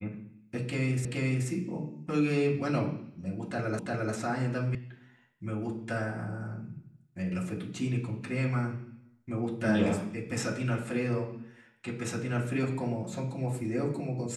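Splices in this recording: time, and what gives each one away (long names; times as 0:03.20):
0:01.05: the same again, the last 0.43 s
0:03.79: the same again, the last 0.35 s
0:04.75: cut off before it has died away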